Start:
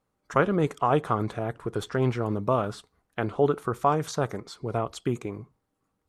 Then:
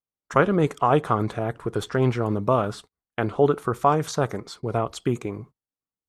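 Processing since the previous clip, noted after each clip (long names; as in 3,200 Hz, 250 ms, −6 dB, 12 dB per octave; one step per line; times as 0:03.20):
noise gate −47 dBFS, range −27 dB
level +3.5 dB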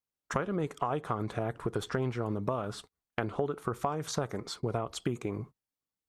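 downward compressor 10 to 1, threshold −28 dBFS, peak gain reduction 16 dB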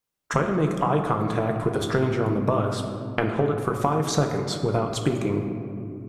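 convolution reverb RT60 2.6 s, pre-delay 6 ms, DRR 3.5 dB
level +7.5 dB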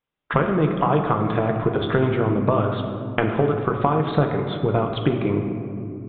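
downsampling to 8,000 Hz
level +3 dB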